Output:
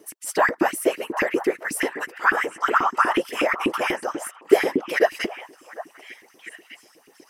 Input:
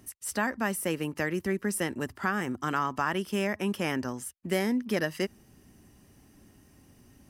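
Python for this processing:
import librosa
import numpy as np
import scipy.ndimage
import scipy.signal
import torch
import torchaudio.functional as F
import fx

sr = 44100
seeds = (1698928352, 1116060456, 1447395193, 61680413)

y = fx.whisperise(x, sr, seeds[0])
y = fx.filter_lfo_highpass(y, sr, shape='saw_up', hz=8.2, low_hz=270.0, high_hz=2600.0, q=4.8)
y = fx.echo_stepped(y, sr, ms=751, hz=1000.0, octaves=1.4, feedback_pct=70, wet_db=-9)
y = F.gain(torch.from_numpy(y), 3.5).numpy()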